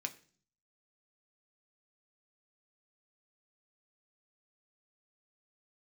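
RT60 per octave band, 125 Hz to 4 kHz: 0.80, 0.70, 0.50, 0.40, 0.40, 0.50 seconds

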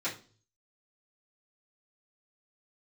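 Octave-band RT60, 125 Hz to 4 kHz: 0.85, 0.50, 0.45, 0.35, 0.30, 0.40 seconds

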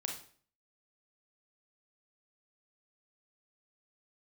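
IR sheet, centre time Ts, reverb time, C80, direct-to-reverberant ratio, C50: 27 ms, 0.50 s, 11.0 dB, 1.0 dB, 6.0 dB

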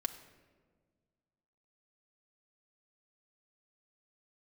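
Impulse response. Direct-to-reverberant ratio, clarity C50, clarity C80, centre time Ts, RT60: 4.0 dB, 11.5 dB, 13.0 dB, 12 ms, 1.6 s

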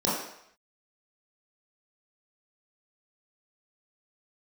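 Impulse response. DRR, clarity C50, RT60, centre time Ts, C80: −8.5 dB, 1.5 dB, 0.70 s, 59 ms, 5.0 dB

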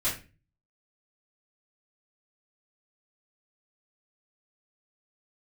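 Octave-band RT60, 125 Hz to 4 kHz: 0.65, 0.45, 0.35, 0.30, 0.35, 0.30 seconds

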